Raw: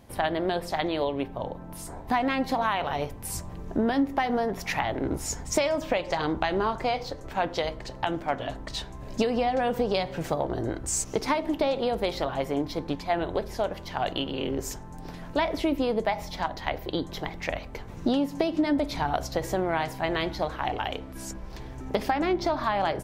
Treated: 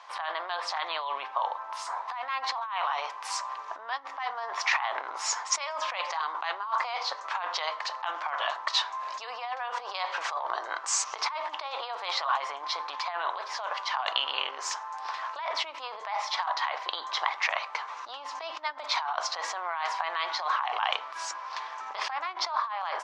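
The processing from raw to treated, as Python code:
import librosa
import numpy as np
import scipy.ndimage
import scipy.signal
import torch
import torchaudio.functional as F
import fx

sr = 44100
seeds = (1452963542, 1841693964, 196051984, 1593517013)

y = scipy.signal.sosfilt(scipy.signal.butter(4, 5900.0, 'lowpass', fs=sr, output='sos'), x)
y = fx.peak_eq(y, sr, hz=1100.0, db=12.0, octaves=0.5)
y = fx.over_compress(y, sr, threshold_db=-30.0, ratio=-1.0)
y = scipy.signal.sosfilt(scipy.signal.butter(4, 840.0, 'highpass', fs=sr, output='sos'), y)
y = y * librosa.db_to_amplitude(4.0)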